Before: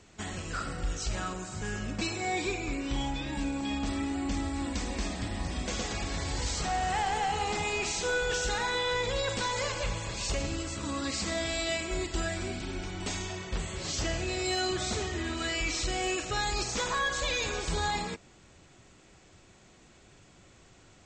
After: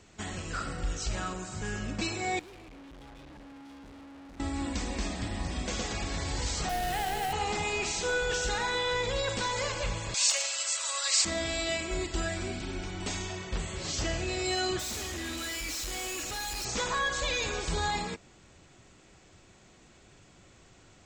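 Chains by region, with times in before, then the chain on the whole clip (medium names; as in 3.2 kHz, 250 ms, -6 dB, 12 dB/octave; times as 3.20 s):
2.39–4.40 s: low-pass 1.3 kHz 6 dB/octave + valve stage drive 48 dB, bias 0.7
6.69–7.33 s: peaking EQ 1.1 kHz -9.5 dB 0.51 oct + frequency shift -22 Hz + careless resampling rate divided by 4×, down none, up hold
10.14–11.25 s: elliptic high-pass 540 Hz, stop band 80 dB + tilt EQ +4.5 dB/octave
14.79–16.65 s: treble shelf 3.6 kHz +9.5 dB + comb 3.6 ms, depth 45% + overload inside the chain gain 34.5 dB
whole clip: none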